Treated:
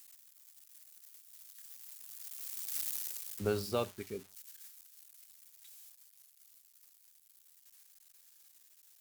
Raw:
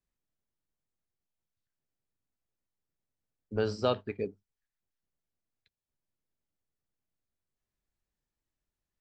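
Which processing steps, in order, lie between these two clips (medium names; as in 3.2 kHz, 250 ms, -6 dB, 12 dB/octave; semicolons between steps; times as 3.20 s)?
zero-crossing glitches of -30.5 dBFS; Doppler pass-by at 2.82 s, 17 m/s, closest 3.3 m; trim +8 dB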